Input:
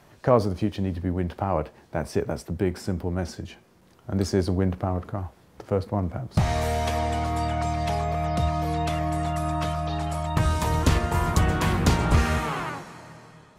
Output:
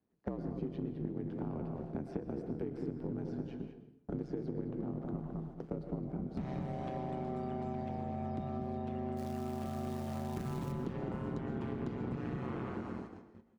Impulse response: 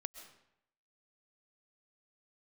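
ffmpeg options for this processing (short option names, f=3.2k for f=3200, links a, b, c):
-filter_complex "[0:a]aemphasis=mode=reproduction:type=50fm,acrossover=split=320|3800[a][b][c];[a]acompressor=threshold=-28dB:ratio=4[d];[b]acompressor=threshold=-30dB:ratio=4[e];[c]acompressor=threshold=-60dB:ratio=4[f];[d][e][f]amix=inputs=3:normalize=0,firequalizer=gain_entry='entry(340,0);entry(530,-12);entry(1200,-15)':delay=0.05:min_phase=1,asplit=2[g][h];[h]asoftclip=type=hard:threshold=-31.5dB,volume=-12dB[i];[g][i]amix=inputs=2:normalize=0,asplit=3[j][k][l];[j]afade=t=out:st=9.16:d=0.02[m];[k]acrusher=bits=6:mode=log:mix=0:aa=0.000001,afade=t=in:st=9.16:d=0.02,afade=t=out:st=10.71:d=0.02[n];[l]afade=t=in:st=10.71:d=0.02[o];[m][n][o]amix=inputs=3:normalize=0,asplit=2[p][q];[q]adelay=211,lowpass=f=1.6k:p=1,volume=-5dB,asplit=2[r][s];[s]adelay=211,lowpass=f=1.6k:p=1,volume=0.3,asplit=2[t][u];[u]adelay=211,lowpass=f=1.6k:p=1,volume=0.3,asplit=2[v][w];[w]adelay=211,lowpass=f=1.6k:p=1,volume=0.3[x];[p][r][t][v][x]amix=inputs=5:normalize=0,aeval=exprs='val(0)*sin(2*PI*65*n/s)':c=same,agate=range=-23dB:threshold=-44dB:ratio=16:detection=peak,highpass=f=210:p=1[y];[1:a]atrim=start_sample=2205,asetrate=48510,aresample=44100[z];[y][z]afir=irnorm=-1:irlink=0,acompressor=threshold=-42dB:ratio=6,volume=7.5dB"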